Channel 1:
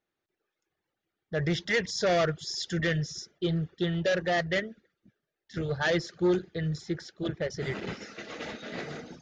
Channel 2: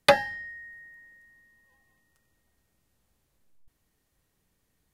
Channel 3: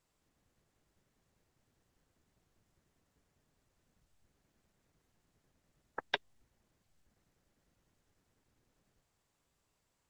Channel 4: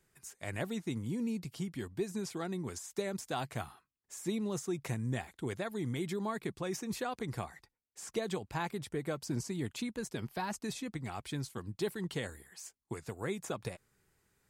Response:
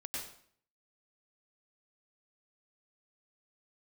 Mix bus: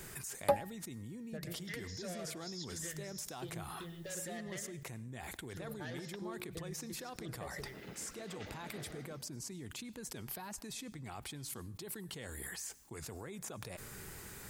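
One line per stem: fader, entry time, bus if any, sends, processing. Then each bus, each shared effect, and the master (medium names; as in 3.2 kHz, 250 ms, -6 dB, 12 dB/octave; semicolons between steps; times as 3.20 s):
-12.0 dB, 0.00 s, send -5 dB, compression, threshold -33 dBFS, peak gain reduction 11 dB; harmonic tremolo 6.7 Hz, depth 50%, crossover 970 Hz; upward compressor, threshold -54 dBFS
-0.5 dB, 0.40 s, no send, high-order bell 3.4 kHz -15.5 dB 2.9 oct; auto duck -13 dB, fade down 0.75 s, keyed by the fourth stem
-18.5 dB, 0.00 s, no send, none
-17.0 dB, 0.00 s, send -18.5 dB, level flattener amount 100%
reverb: on, RT60 0.55 s, pre-delay 90 ms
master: treble shelf 10 kHz +7 dB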